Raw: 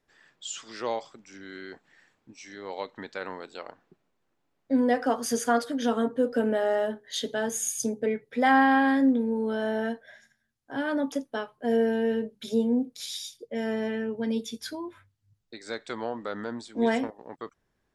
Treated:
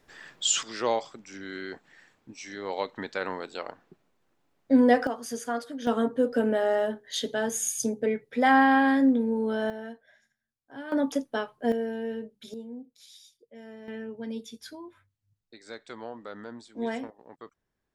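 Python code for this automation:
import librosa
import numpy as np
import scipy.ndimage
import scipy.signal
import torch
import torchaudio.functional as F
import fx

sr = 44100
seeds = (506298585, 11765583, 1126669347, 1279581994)

y = fx.gain(x, sr, db=fx.steps((0.0, 12.0), (0.63, 4.0), (5.07, -7.0), (5.87, 0.5), (9.7, -10.0), (10.92, 2.0), (11.72, -7.0), (12.54, -16.0), (13.88, -7.0)))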